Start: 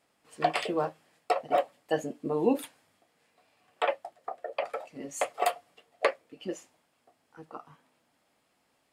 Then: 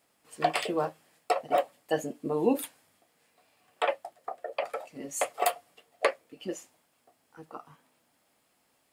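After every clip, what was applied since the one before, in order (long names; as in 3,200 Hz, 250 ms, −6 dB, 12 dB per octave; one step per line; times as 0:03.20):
high-shelf EQ 9,300 Hz +11.5 dB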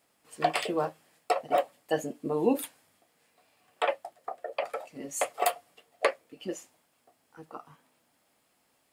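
no processing that can be heard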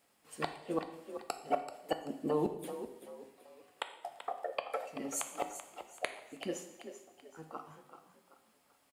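gate with flip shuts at −17 dBFS, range −39 dB
on a send: echo with shifted repeats 384 ms, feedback 36%, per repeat +35 Hz, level −11 dB
on the sum: coupled-rooms reverb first 0.82 s, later 2.3 s, DRR 7 dB
level −2 dB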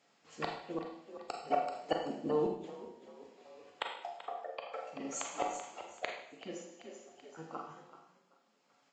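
amplitude tremolo 0.54 Hz, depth 61%
four-comb reverb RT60 0.57 s, combs from 33 ms, DRR 3.5 dB
level +1 dB
Ogg Vorbis 48 kbit/s 16,000 Hz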